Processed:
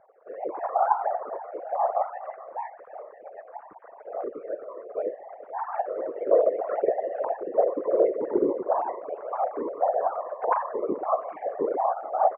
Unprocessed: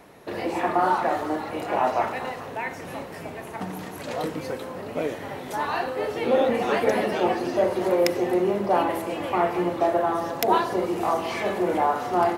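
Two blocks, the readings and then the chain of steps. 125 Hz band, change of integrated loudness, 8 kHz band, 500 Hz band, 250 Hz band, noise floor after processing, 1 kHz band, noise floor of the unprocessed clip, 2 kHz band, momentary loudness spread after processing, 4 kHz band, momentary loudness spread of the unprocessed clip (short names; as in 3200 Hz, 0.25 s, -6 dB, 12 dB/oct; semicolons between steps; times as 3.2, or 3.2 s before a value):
under -20 dB, -2.5 dB, under -35 dB, -1.5 dB, -9.5 dB, -49 dBFS, -3.0 dB, -38 dBFS, -14.5 dB, 16 LU, under -40 dB, 12 LU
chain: sine-wave speech; LPF 1300 Hz 24 dB/oct; outdoor echo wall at 74 m, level -24 dB; whisperiser; gain -2.5 dB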